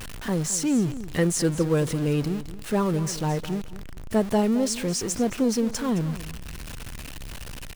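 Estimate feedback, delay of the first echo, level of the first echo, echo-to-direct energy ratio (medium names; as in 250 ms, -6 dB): 21%, 216 ms, -14.5 dB, -14.5 dB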